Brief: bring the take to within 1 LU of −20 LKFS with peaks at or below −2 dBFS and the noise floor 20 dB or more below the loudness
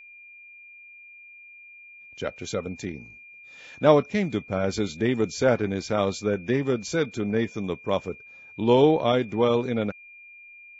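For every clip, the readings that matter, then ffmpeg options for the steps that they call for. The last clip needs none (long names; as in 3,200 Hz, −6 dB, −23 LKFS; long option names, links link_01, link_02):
interfering tone 2,400 Hz; level of the tone −45 dBFS; integrated loudness −25.0 LKFS; sample peak −3.0 dBFS; target loudness −20.0 LKFS
→ -af "bandreject=frequency=2400:width=30"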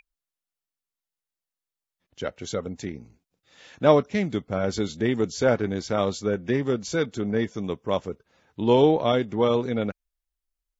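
interfering tone none found; integrated loudness −25.0 LKFS; sample peak −3.5 dBFS; target loudness −20.0 LKFS
→ -af "volume=5dB,alimiter=limit=-2dB:level=0:latency=1"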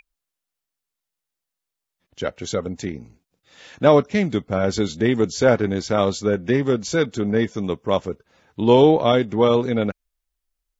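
integrated loudness −20.0 LKFS; sample peak −2.0 dBFS; background noise floor −84 dBFS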